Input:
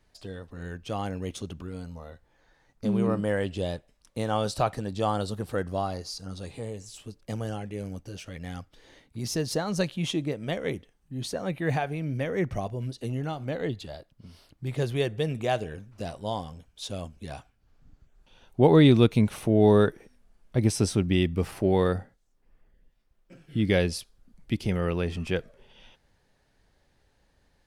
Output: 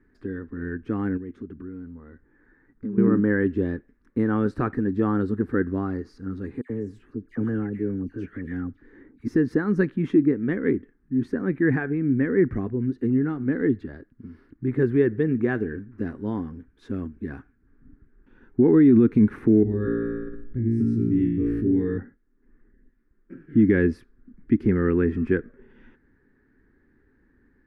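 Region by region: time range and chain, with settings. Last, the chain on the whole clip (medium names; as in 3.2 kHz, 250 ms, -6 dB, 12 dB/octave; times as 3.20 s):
1.17–2.98 s: low-pass 3.8 kHz 6 dB/octave + compression 2:1, threshold -48 dBFS
6.61–9.28 s: phase dispersion lows, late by 88 ms, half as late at 1.7 kHz + tape noise reduction on one side only decoder only
19.63–21.98 s: amplifier tone stack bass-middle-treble 10-0-1 + flutter echo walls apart 3 m, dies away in 0.83 s + level flattener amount 70%
whole clip: FFT filter 170 Hz 0 dB, 250 Hz +13 dB, 410 Hz +7 dB, 620 Hz -16 dB, 1.7 kHz +6 dB, 3 kHz -21 dB, 7.5 kHz -28 dB; loudness maximiser +11 dB; trim -8.5 dB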